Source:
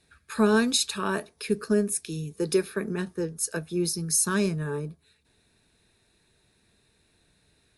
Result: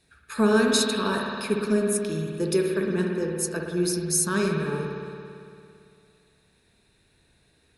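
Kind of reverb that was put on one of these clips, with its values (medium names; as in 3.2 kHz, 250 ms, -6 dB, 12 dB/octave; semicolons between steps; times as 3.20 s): spring tank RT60 2.5 s, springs 56 ms, chirp 25 ms, DRR 0.5 dB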